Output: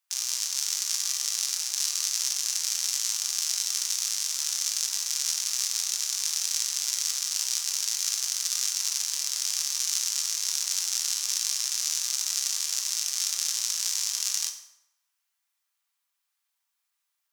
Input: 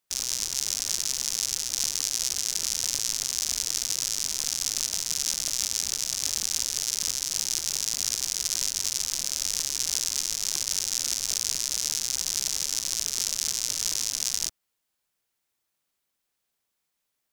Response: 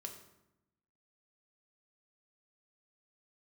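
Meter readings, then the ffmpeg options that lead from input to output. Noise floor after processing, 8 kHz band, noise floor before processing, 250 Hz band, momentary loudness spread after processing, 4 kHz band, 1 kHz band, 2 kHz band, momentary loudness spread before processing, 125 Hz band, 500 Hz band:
−80 dBFS, 0.0 dB, −80 dBFS, below −30 dB, 1 LU, 0.0 dB, −0.5 dB, 0.0 dB, 1 LU, below −40 dB, below −10 dB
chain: -filter_complex "[0:a]highpass=frequency=850:width=0.5412,highpass=frequency=850:width=1.3066[link_01];[1:a]atrim=start_sample=2205[link_02];[link_01][link_02]afir=irnorm=-1:irlink=0,volume=4dB"

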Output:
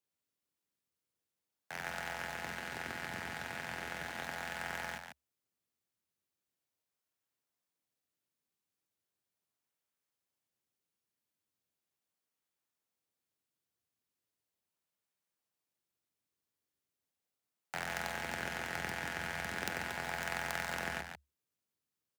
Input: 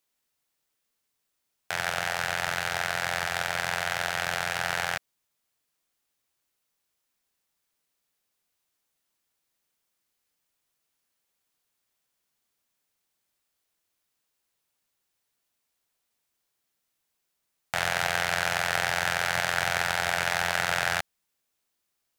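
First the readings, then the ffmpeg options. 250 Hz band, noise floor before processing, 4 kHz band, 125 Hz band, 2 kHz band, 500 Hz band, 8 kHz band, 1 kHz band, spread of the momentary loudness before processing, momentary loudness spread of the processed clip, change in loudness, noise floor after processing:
−3.5 dB, −80 dBFS, −14.5 dB, −9.5 dB, −12.0 dB, −11.0 dB, −13.5 dB, −12.0 dB, 4 LU, 6 LU, −12.5 dB, below −85 dBFS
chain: -filter_complex "[0:a]asplit=2[link_01][link_02];[link_02]acrusher=samples=35:mix=1:aa=0.000001:lfo=1:lforange=56:lforate=0.38,volume=-10.5dB[link_03];[link_01][link_03]amix=inputs=2:normalize=0,aecho=1:1:145:0.422,aeval=exprs='0.668*(cos(1*acos(clip(val(0)/0.668,-1,1)))-cos(1*PI/2))+0.15*(cos(3*acos(clip(val(0)/0.668,-1,1)))-cos(3*PI/2))+0.0841*(cos(4*acos(clip(val(0)/0.668,-1,1)))-cos(4*PI/2))+0.0376*(cos(5*acos(clip(val(0)/0.668,-1,1)))-cos(5*PI/2))':channel_layout=same,afreqshift=69,volume=-8dB"

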